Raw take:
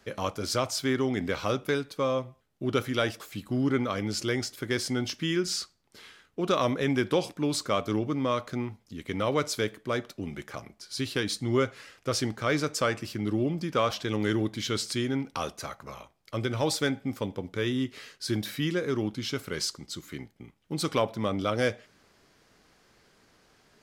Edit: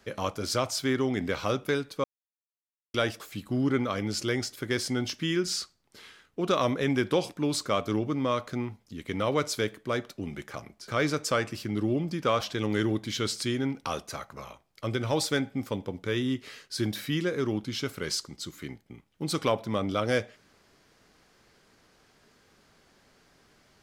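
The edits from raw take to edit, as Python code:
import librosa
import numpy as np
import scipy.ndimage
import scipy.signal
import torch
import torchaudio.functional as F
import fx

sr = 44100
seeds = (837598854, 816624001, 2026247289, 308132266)

y = fx.edit(x, sr, fx.silence(start_s=2.04, length_s=0.9),
    fx.cut(start_s=10.88, length_s=1.5), tone=tone)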